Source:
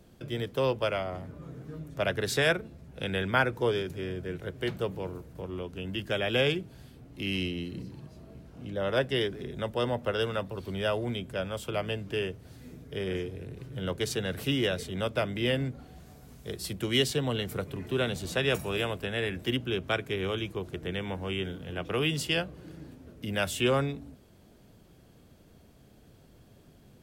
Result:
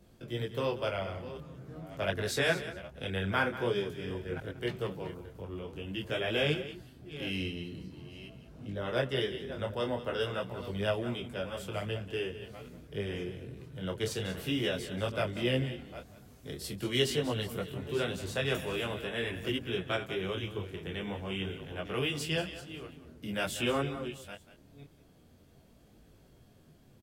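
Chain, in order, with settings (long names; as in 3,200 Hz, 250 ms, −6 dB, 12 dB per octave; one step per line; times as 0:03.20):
delay that plays each chunk backwards 487 ms, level −13 dB
on a send: single-tap delay 188 ms −13.5 dB
on the sum: micro pitch shift up and down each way 16 cents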